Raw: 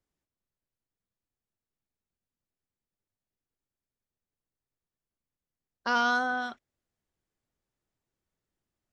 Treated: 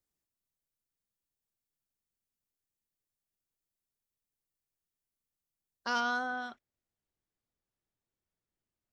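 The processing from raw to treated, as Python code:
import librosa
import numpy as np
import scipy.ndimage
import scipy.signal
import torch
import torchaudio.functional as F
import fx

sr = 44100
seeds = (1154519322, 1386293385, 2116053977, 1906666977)

y = fx.high_shelf(x, sr, hz=5400.0, db=fx.steps((0.0, 11.5), (5.99, -2.0)))
y = F.gain(torch.from_numpy(y), -6.0).numpy()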